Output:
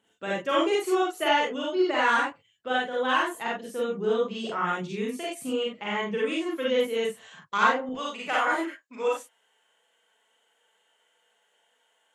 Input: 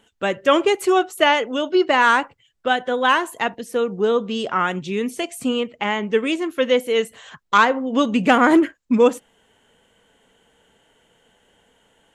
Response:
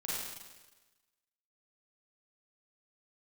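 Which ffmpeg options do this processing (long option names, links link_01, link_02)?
-filter_complex "[0:a]asetnsamples=nb_out_samples=441:pad=0,asendcmd='7.89 highpass f 680',highpass=100[link_01];[1:a]atrim=start_sample=2205,atrim=end_sample=4410[link_02];[link_01][link_02]afir=irnorm=-1:irlink=0,volume=-8dB"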